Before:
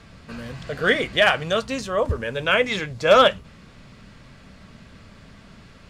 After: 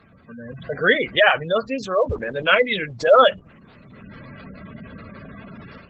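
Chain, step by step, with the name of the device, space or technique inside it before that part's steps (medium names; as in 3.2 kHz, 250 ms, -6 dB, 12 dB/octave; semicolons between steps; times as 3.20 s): noise-suppressed video call (high-pass 170 Hz 6 dB/octave; spectral gate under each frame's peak -15 dB strong; level rider gain up to 13 dB; trim -1.5 dB; Opus 16 kbps 48 kHz)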